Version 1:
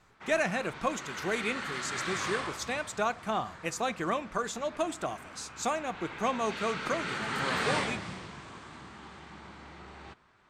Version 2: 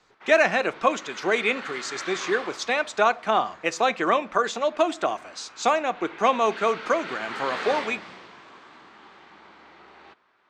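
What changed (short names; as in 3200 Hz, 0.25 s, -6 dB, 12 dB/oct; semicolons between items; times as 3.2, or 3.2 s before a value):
speech +10.0 dB; master: add three-band isolator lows -19 dB, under 260 Hz, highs -23 dB, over 5900 Hz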